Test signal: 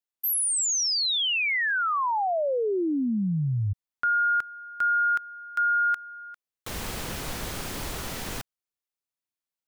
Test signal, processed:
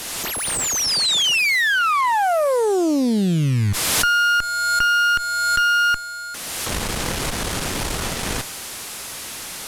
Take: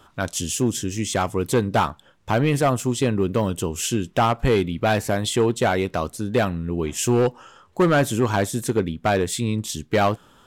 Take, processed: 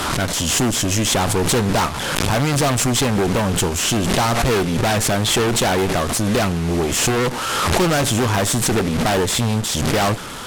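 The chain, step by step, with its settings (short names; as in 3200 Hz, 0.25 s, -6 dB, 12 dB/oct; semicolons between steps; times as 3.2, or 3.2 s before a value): delta modulation 64 kbps, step -33.5 dBFS; added harmonics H 5 -8 dB, 8 -12 dB, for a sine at -12 dBFS; backwards sustainer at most 24 dB/s; gain -1 dB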